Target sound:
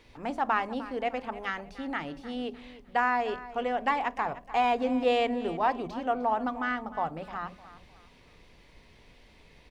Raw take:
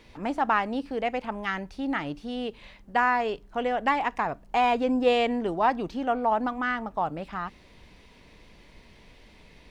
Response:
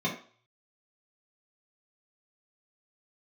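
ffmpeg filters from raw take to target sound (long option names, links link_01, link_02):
-filter_complex "[0:a]aecho=1:1:304|608|912:0.158|0.0539|0.0183,asplit=2[link_01][link_02];[1:a]atrim=start_sample=2205,lowpass=1200[link_03];[link_02][link_03]afir=irnorm=-1:irlink=0,volume=-20.5dB[link_04];[link_01][link_04]amix=inputs=2:normalize=0,volume=-3.5dB"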